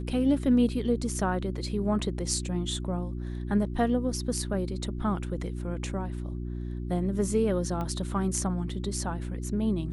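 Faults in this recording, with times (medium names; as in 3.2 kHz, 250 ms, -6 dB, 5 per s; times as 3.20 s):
hum 60 Hz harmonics 6 -34 dBFS
7.81 s: pop -22 dBFS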